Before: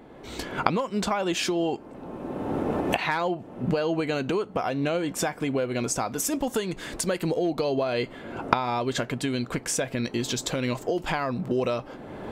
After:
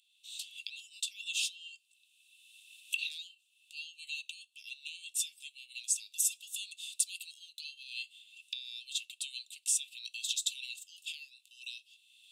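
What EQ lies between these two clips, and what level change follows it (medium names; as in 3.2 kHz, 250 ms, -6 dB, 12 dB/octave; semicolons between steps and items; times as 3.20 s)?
rippled Chebyshev high-pass 2.6 kHz, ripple 9 dB; +2.5 dB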